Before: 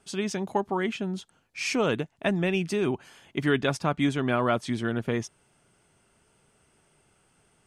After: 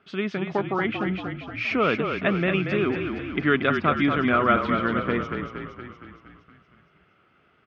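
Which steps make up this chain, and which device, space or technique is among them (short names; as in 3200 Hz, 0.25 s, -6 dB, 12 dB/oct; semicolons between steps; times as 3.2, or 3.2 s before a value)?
frequency-shifting delay pedal into a guitar cabinet (frequency-shifting echo 0.233 s, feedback 61%, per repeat -36 Hz, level -6 dB; speaker cabinet 89–3400 Hz, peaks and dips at 120 Hz -5 dB, 880 Hz -7 dB, 1300 Hz +9 dB, 2100 Hz +4 dB); gain +2 dB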